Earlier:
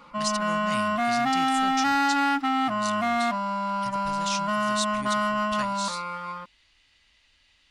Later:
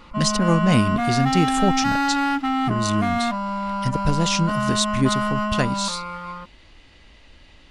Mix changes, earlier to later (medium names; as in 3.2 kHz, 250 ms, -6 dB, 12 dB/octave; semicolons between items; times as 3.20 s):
speech: remove amplifier tone stack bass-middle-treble 5-5-5; master: add bass shelf 300 Hz +7.5 dB